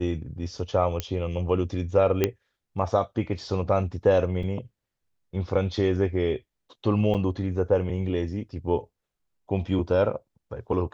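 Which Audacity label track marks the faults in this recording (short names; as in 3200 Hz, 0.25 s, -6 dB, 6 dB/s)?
1.000000	1.000000	pop -12 dBFS
2.240000	2.240000	pop -8 dBFS
4.430000	4.430000	gap 3 ms
7.140000	7.150000	gap 7.3 ms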